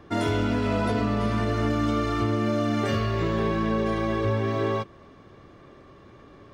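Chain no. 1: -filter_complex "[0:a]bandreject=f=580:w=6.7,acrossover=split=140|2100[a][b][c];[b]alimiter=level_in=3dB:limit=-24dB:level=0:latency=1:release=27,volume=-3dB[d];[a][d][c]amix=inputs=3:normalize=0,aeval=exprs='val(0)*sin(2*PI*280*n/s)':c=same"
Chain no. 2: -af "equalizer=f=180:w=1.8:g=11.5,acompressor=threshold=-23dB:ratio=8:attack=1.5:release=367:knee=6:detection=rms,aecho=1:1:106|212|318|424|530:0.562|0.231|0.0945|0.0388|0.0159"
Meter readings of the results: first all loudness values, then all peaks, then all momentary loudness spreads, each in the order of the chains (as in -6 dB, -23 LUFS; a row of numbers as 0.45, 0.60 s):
-32.5, -29.0 LUFS; -18.5, -16.0 dBFS; 3, 19 LU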